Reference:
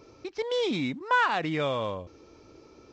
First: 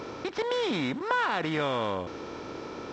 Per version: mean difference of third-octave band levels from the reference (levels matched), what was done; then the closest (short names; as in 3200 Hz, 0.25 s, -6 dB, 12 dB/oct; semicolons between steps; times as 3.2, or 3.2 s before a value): 8.5 dB: per-bin compression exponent 0.6; compressor 2.5:1, threshold -26 dBFS, peak gain reduction 5.5 dB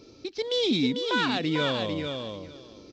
6.0 dB: ten-band EQ 250 Hz +6 dB, 1000 Hz -7 dB, 2000 Hz -3 dB, 4000 Hz +10 dB; on a send: feedback echo 0.446 s, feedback 17%, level -5.5 dB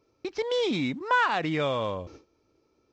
4.0 dB: gate with hold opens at -41 dBFS; in parallel at +1 dB: compressor, threshold -36 dBFS, peak gain reduction 15 dB; on the sum: gain -1.5 dB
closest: third